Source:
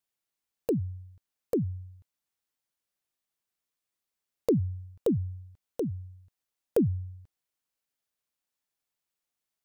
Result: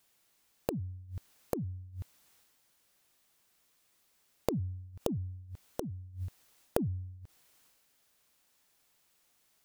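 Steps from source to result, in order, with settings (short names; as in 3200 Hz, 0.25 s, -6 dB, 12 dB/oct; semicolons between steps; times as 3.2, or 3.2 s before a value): transient shaper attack -9 dB, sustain +5 dB; flipped gate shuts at -38 dBFS, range -24 dB; gain +16 dB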